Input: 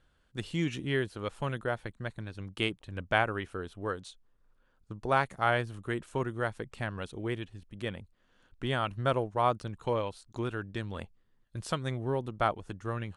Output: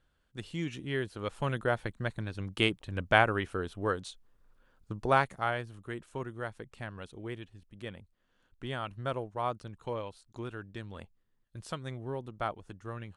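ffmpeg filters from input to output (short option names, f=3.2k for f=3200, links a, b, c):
-af "volume=3.5dB,afade=t=in:st=0.86:d=0.92:silence=0.398107,afade=t=out:st=4.98:d=0.56:silence=0.334965"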